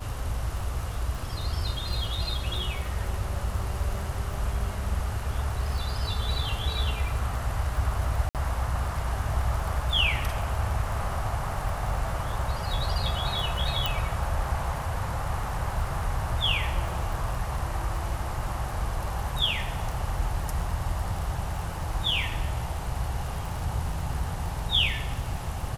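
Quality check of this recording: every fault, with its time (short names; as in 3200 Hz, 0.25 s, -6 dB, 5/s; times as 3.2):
crackle 19/s -32 dBFS
8.29–8.35 gap 58 ms
13.86 pop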